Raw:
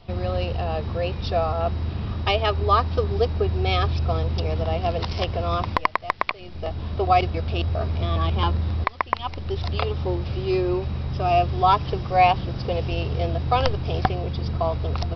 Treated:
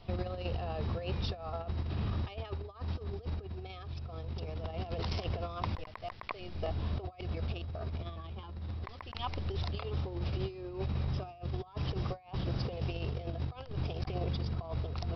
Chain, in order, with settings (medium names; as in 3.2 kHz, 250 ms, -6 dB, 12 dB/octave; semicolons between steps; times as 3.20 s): compressor with a negative ratio -27 dBFS, ratio -0.5; trim -9 dB